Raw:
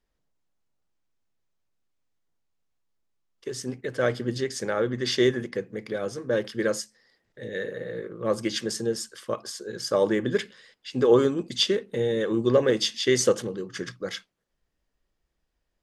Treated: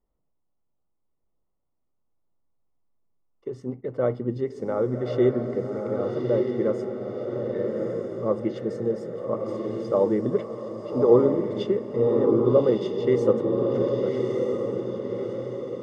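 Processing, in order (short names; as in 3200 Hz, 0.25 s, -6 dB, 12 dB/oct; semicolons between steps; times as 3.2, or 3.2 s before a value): polynomial smoothing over 65 samples; on a send: diffused feedback echo 1.21 s, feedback 48%, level -3 dB; on the sum: gain +1 dB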